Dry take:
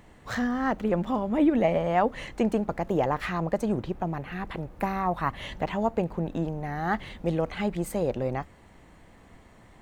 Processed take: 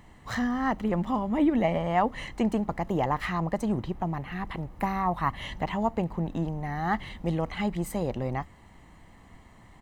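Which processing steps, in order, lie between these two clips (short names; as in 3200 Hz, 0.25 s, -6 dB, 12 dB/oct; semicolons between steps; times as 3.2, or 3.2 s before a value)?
comb 1 ms, depth 38%; gain -1 dB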